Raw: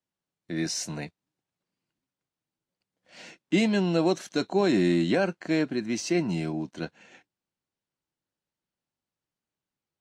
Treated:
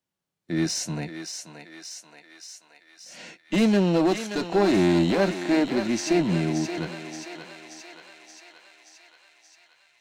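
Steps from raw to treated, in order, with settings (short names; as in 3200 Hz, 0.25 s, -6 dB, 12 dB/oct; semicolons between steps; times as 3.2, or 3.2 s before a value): one-sided clip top -26 dBFS, bottom -17.5 dBFS; thinning echo 0.577 s, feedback 67%, high-pass 580 Hz, level -6.5 dB; harmonic-percussive split harmonic +6 dB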